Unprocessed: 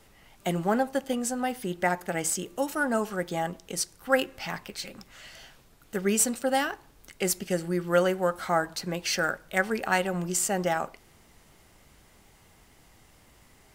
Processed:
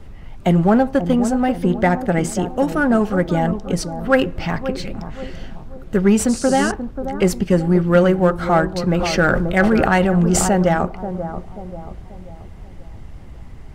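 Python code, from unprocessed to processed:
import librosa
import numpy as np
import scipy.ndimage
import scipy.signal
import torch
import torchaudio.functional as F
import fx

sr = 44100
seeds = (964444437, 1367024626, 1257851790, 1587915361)

p1 = fx.riaa(x, sr, side='playback')
p2 = fx.dmg_noise_band(p1, sr, seeds[0], low_hz=4400.0, high_hz=9400.0, level_db=-41.0, at=(6.28, 6.7), fade=0.02)
p3 = np.clip(10.0 ** (21.0 / 20.0) * p2, -1.0, 1.0) / 10.0 ** (21.0 / 20.0)
p4 = p2 + (p3 * librosa.db_to_amplitude(-6.5))
p5 = fx.hpss(p4, sr, part='harmonic', gain_db=-3)
p6 = p5 + fx.echo_bbd(p5, sr, ms=535, stages=4096, feedback_pct=42, wet_db=-10.0, dry=0)
p7 = fx.sustainer(p6, sr, db_per_s=25.0, at=(8.87, 10.49))
y = p7 * librosa.db_to_amplitude(7.0)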